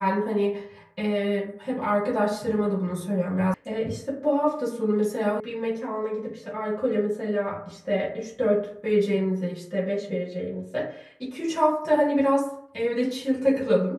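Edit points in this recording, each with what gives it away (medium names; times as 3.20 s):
3.54 s: sound stops dead
5.40 s: sound stops dead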